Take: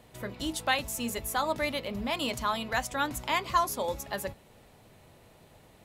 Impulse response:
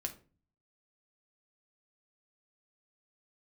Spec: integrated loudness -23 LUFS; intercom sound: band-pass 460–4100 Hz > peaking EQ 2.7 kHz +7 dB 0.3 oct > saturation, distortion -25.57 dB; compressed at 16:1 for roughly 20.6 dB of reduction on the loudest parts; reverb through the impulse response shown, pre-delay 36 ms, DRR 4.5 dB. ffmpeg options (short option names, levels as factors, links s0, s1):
-filter_complex "[0:a]acompressor=threshold=0.00794:ratio=16,asplit=2[s0][s1];[1:a]atrim=start_sample=2205,adelay=36[s2];[s1][s2]afir=irnorm=-1:irlink=0,volume=0.631[s3];[s0][s3]amix=inputs=2:normalize=0,highpass=460,lowpass=4100,equalizer=f=2700:t=o:w=0.3:g=7,asoftclip=threshold=0.0316,volume=15"